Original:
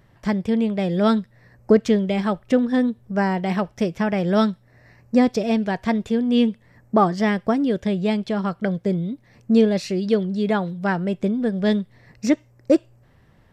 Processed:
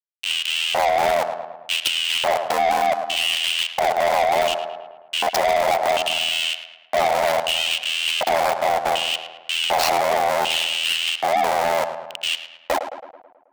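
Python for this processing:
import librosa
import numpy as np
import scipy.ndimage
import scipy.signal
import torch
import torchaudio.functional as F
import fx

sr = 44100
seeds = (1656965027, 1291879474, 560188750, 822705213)

p1 = fx.low_shelf(x, sr, hz=280.0, db=5.0)
p2 = fx.over_compress(p1, sr, threshold_db=-23.0, ratio=-1.0)
p3 = p1 + (p2 * 10.0 ** (2.0 / 20.0))
p4 = fx.schmitt(p3, sr, flips_db=-26.5)
p5 = fx.filter_lfo_highpass(p4, sr, shape='square', hz=0.67, low_hz=700.0, high_hz=2900.0, q=7.7)
p6 = p5 + fx.echo_filtered(p5, sr, ms=108, feedback_pct=56, hz=3000.0, wet_db=-13.0, dry=0)
p7 = 10.0 ** (-15.5 / 20.0) * np.tanh(p6 / 10.0 ** (-15.5 / 20.0))
p8 = p7 * np.sin(2.0 * np.pi * 41.0 * np.arange(len(p7)) / sr)
y = p8 * 10.0 ** (2.0 / 20.0)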